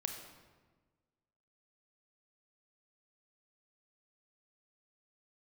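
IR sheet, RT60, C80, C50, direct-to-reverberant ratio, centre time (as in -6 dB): 1.4 s, 7.0 dB, 5.5 dB, 4.0 dB, 35 ms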